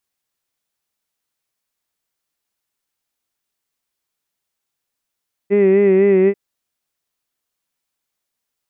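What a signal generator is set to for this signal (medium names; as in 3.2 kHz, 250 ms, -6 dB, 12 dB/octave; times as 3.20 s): formant-synthesis vowel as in hid, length 0.84 s, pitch 198 Hz, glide -0.5 st, vibrato 4 Hz, vibrato depth 0.65 st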